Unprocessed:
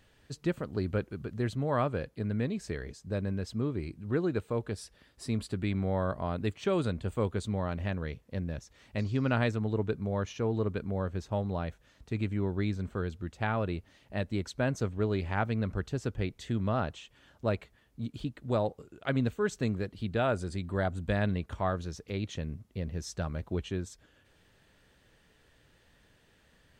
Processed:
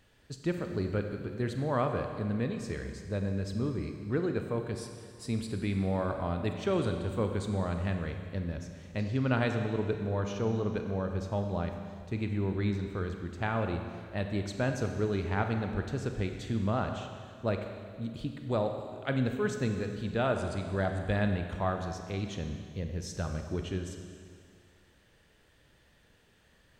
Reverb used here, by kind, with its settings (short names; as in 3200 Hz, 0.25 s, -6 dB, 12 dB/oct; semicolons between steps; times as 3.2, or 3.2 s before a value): Schroeder reverb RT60 2.1 s, combs from 31 ms, DRR 5 dB; gain -1 dB